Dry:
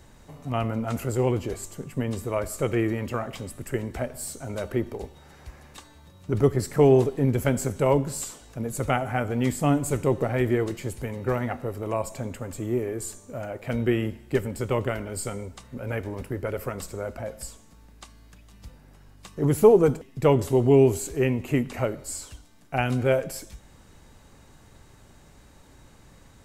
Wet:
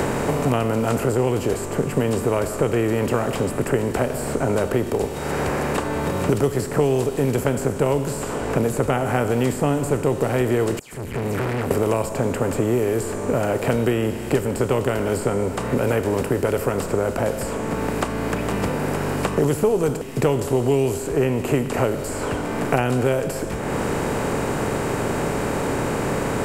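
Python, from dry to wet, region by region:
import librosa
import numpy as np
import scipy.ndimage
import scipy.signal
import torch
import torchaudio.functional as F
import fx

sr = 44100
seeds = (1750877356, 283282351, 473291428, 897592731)

y = fx.chain(x, sr, fx.tone_stack(knobs='6-0-2'),
    fx.dispersion(late='lows', ms=132.0, hz=2700.0),
    fx.tube_stage(drive_db=54.0, bias=0.2), at=(10.79, 11.71))
y = fx.bin_compress(y, sr, power=0.6)
y = fx.dynamic_eq(y, sr, hz=2200.0, q=4.9, threshold_db=-47.0, ratio=4.0, max_db=-4)
y = fx.band_squash(y, sr, depth_pct=100)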